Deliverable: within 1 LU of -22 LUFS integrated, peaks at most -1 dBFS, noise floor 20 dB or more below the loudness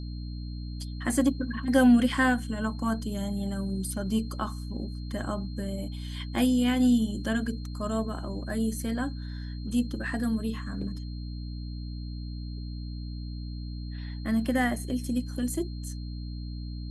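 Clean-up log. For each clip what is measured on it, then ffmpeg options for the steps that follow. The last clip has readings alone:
hum 60 Hz; harmonics up to 300 Hz; hum level -34 dBFS; steady tone 4200 Hz; tone level -51 dBFS; loudness -30.0 LUFS; peak -10.5 dBFS; loudness target -22.0 LUFS
-> -af "bandreject=f=60:t=h:w=6,bandreject=f=120:t=h:w=6,bandreject=f=180:t=h:w=6,bandreject=f=240:t=h:w=6,bandreject=f=300:t=h:w=6"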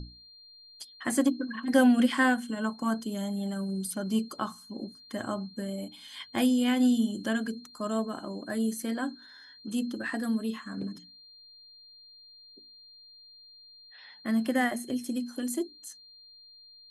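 hum none; steady tone 4200 Hz; tone level -51 dBFS
-> -af "bandreject=f=4.2k:w=30"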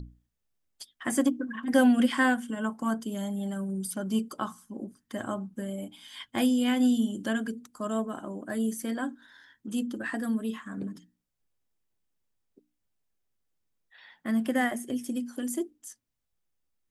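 steady tone none; loudness -29.5 LUFS; peak -11.0 dBFS; loudness target -22.0 LUFS
-> -af "volume=7.5dB"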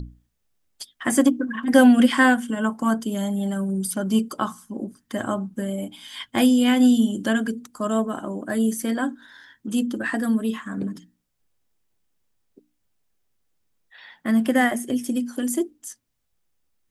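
loudness -22.0 LUFS; peak -3.5 dBFS; noise floor -73 dBFS

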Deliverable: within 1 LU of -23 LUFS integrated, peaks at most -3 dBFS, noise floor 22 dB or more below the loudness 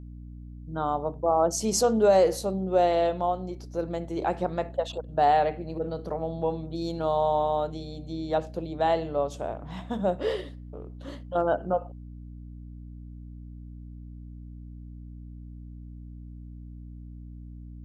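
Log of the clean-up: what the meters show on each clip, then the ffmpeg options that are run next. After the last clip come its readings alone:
hum 60 Hz; harmonics up to 300 Hz; hum level -39 dBFS; loudness -27.0 LUFS; peak -10.5 dBFS; loudness target -23.0 LUFS
-> -af "bandreject=f=60:t=h:w=6,bandreject=f=120:t=h:w=6,bandreject=f=180:t=h:w=6,bandreject=f=240:t=h:w=6,bandreject=f=300:t=h:w=6"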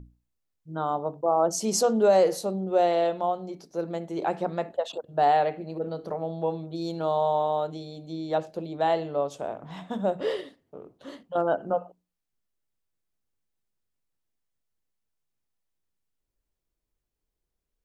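hum none; loudness -27.0 LUFS; peak -10.5 dBFS; loudness target -23.0 LUFS
-> -af "volume=4dB"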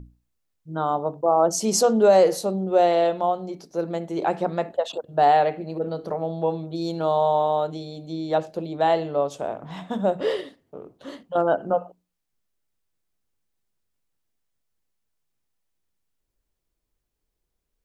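loudness -23.0 LUFS; peak -6.5 dBFS; noise floor -79 dBFS

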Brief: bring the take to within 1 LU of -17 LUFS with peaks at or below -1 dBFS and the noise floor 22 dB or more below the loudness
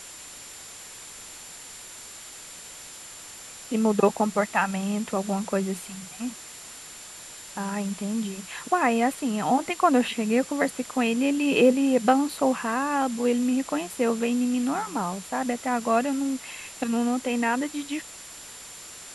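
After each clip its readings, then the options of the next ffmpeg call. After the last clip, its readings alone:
steady tone 7200 Hz; tone level -45 dBFS; noise floor -43 dBFS; noise floor target -48 dBFS; loudness -25.5 LUFS; peak -6.5 dBFS; loudness target -17.0 LUFS
-> -af "bandreject=f=7.2k:w=30"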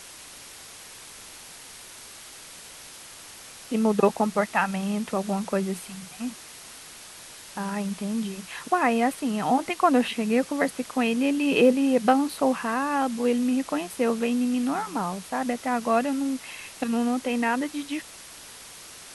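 steady tone none; noise floor -45 dBFS; noise floor target -48 dBFS
-> -af "afftdn=nr=6:nf=-45"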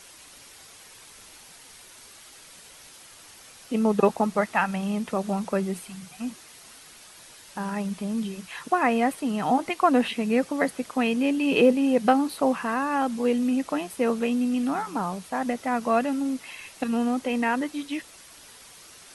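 noise floor -49 dBFS; loudness -25.5 LUFS; peak -6.5 dBFS; loudness target -17.0 LUFS
-> -af "volume=8.5dB,alimiter=limit=-1dB:level=0:latency=1"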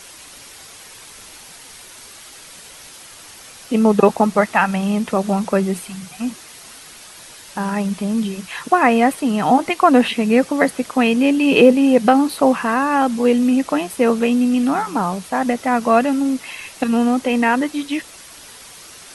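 loudness -17.0 LUFS; peak -1.0 dBFS; noise floor -40 dBFS

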